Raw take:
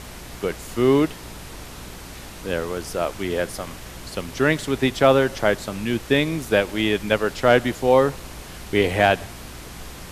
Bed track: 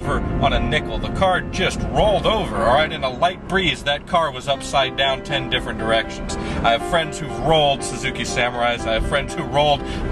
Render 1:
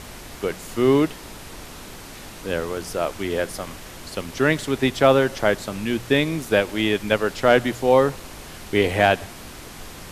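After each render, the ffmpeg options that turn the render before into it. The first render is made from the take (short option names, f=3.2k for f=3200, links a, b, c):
-af "bandreject=f=60:t=h:w=4,bandreject=f=120:t=h:w=4,bandreject=f=180:t=h:w=4"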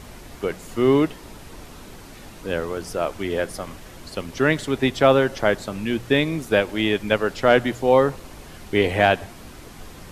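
-af "afftdn=nr=6:nf=-39"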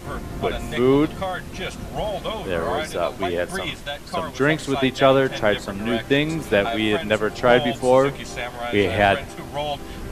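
-filter_complex "[1:a]volume=-10dB[a];[0:a][a]amix=inputs=2:normalize=0"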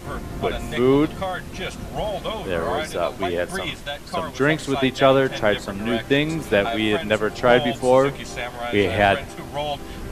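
-af anull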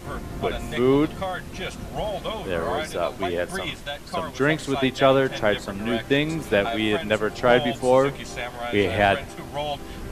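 -af "volume=-2dB"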